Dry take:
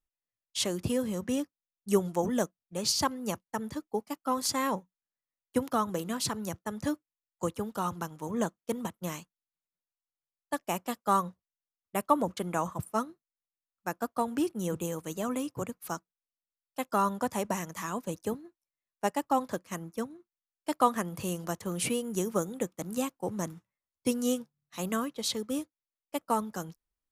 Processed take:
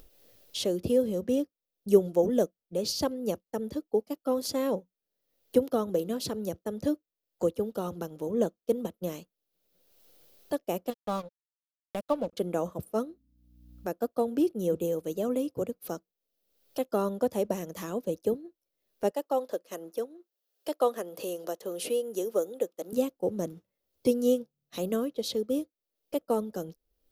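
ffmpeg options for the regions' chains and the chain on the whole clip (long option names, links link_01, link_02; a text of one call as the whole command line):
ffmpeg -i in.wav -filter_complex "[0:a]asettb=1/sr,asplit=3[link_01][link_02][link_03];[link_01]atrim=end=10.904[link_04];[link_02]atrim=start=10.9:end=12.33,asetpts=PTS-STARTPTS,afade=type=in:duration=0.004:curve=qsin,afade=type=out:start_time=1.426:duration=0.004:curve=qsin,lowpass=7300,equalizer=frequency=390:width_type=o:width=0.42:gain=-14,aeval=exprs='sgn(val(0))*max(abs(val(0))-0.0112,0)':channel_layout=same[link_05];[link_03]atrim=start=12.326[link_06];[link_04][link_05]acrossfade=duration=0.004:curve1=hsin:curve2=qsin[link_07];[link_07][link_06]acrossfade=duration=0.004:curve1=qsin:curve2=hsin,asettb=1/sr,asplit=3[link_08][link_09][link_10];[link_08]atrim=end=13.064[link_11];[link_09]atrim=start=13.06:end=13.89,asetpts=PTS-STARTPTS,afade=type=in:duration=0.004:curve=qsin,afade=type=out:start_time=0.826:duration=0.004:curve=qsin,bandreject=frequency=53.47:width_type=h:width=4,bandreject=frequency=106.94:width_type=h:width=4,bandreject=frequency=160.41:width_type=h:width=4,bandreject=frequency=213.88:width_type=h:width=4,bandreject=frequency=267.35:width_type=h:width=4,aeval=exprs='val(0)+0.0002*(sin(2*PI*60*n/s)+sin(2*PI*2*60*n/s)/2+sin(2*PI*3*60*n/s)/3+sin(2*PI*4*60*n/s)/4+sin(2*PI*5*60*n/s)/5)':channel_layout=same[link_12];[link_10]atrim=start=13.886[link_13];[link_11][link_12]acrossfade=duration=0.004:curve1=hsin:curve2=qsin[link_14];[link_14][link_13]acrossfade=duration=0.004:curve1=qsin:curve2=hsin,asettb=1/sr,asplit=3[link_15][link_16][link_17];[link_15]atrim=end=19.114[link_18];[link_16]atrim=start=19.11:end=22.93,asetpts=PTS-STARTPTS,afade=type=in:duration=0.004:curve=qsin,afade=type=out:start_time=3.816:duration=0.004:curve=qsin,highpass=440,bandreject=frequency=2300:width=16[link_19];[link_17]atrim=start=22.926[link_20];[link_18][link_19]acrossfade=duration=0.004:curve1=hsin:curve2=qsin[link_21];[link_21][link_20]acrossfade=duration=0.004:curve1=qsin:curve2=hsin,equalizer=frequency=125:width_type=o:width=1:gain=-7,equalizer=frequency=500:width_type=o:width=1:gain=9,equalizer=frequency=1000:width_type=o:width=1:gain=-12,equalizer=frequency=2000:width_type=o:width=1:gain=-9,equalizer=frequency=8000:width_type=o:width=1:gain=-11,acompressor=mode=upward:threshold=-33dB:ratio=2.5,volume=2dB" out.wav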